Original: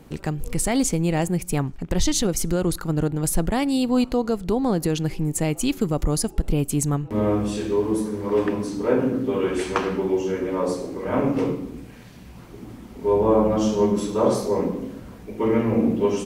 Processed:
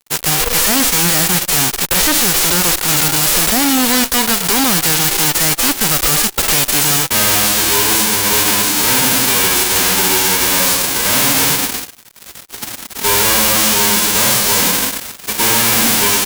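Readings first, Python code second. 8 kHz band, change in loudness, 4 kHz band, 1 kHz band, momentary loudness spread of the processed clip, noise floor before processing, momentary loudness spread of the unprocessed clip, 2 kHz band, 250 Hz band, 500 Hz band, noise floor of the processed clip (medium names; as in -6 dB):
+19.5 dB, +12.0 dB, +22.0 dB, +11.0 dB, 4 LU, -42 dBFS, 7 LU, +20.0 dB, +1.0 dB, -1.0 dB, -36 dBFS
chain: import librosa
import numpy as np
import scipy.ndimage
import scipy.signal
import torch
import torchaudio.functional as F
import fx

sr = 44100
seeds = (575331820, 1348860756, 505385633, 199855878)

y = fx.envelope_flatten(x, sr, power=0.1)
y = fx.fuzz(y, sr, gain_db=31.0, gate_db=-38.0)
y = y * librosa.db_to_amplitude(2.5)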